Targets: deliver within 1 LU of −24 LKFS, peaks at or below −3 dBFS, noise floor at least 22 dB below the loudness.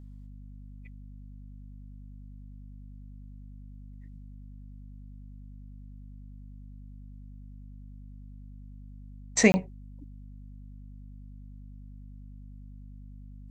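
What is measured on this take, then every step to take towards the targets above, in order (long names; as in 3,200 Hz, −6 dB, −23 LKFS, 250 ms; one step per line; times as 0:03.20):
number of dropouts 1; longest dropout 20 ms; mains hum 50 Hz; hum harmonics up to 250 Hz; level of the hum −43 dBFS; integrated loudness −25.0 LKFS; sample peak −4.5 dBFS; target loudness −24.0 LKFS
→ repair the gap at 0:09.52, 20 ms
hum removal 50 Hz, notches 5
level +1 dB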